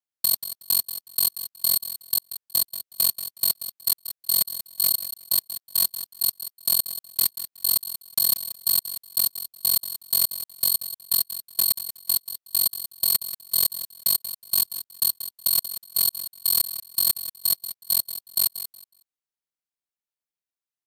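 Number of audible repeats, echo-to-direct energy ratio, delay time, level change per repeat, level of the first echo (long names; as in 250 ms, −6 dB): 2, −12.0 dB, 184 ms, −14.0 dB, −12.0 dB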